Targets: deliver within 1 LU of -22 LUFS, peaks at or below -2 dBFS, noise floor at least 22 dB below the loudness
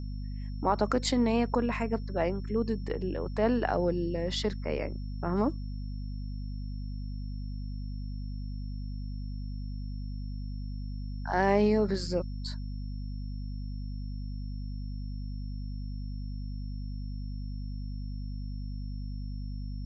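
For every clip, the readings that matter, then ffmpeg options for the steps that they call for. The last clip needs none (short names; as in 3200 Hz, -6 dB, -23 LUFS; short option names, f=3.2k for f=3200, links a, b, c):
hum 50 Hz; harmonics up to 250 Hz; hum level -34 dBFS; steady tone 5400 Hz; tone level -59 dBFS; loudness -33.5 LUFS; peak -12.0 dBFS; loudness target -22.0 LUFS
-> -af "bandreject=f=50:t=h:w=4,bandreject=f=100:t=h:w=4,bandreject=f=150:t=h:w=4,bandreject=f=200:t=h:w=4,bandreject=f=250:t=h:w=4"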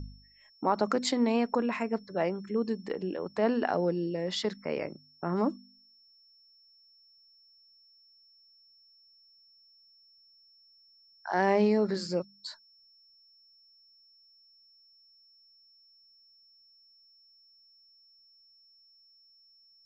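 hum none; steady tone 5400 Hz; tone level -59 dBFS
-> -af "bandreject=f=5.4k:w=30"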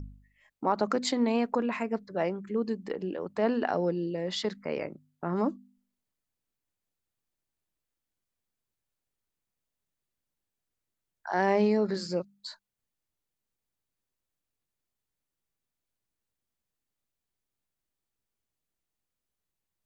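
steady tone none; loudness -30.0 LUFS; peak -13.0 dBFS; loudness target -22.0 LUFS
-> -af "volume=8dB"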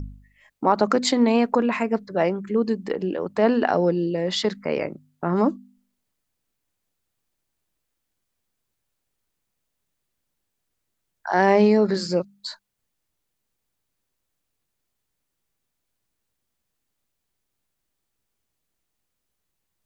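loudness -22.0 LUFS; peak -5.0 dBFS; noise floor -79 dBFS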